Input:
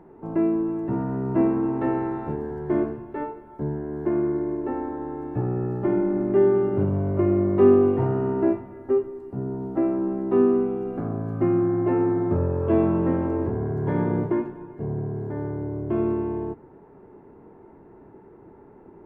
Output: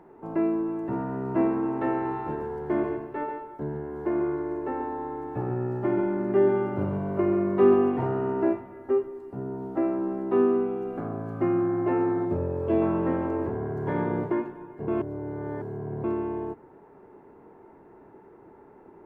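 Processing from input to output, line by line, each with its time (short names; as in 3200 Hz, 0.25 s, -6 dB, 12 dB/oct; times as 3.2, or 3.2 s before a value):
1.91–8.03 echo 0.138 s -6.5 dB
12.25–12.82 bell 1300 Hz -8 dB 1.2 oct
14.88–16.04 reverse
whole clip: low shelf 330 Hz -9.5 dB; gain +1.5 dB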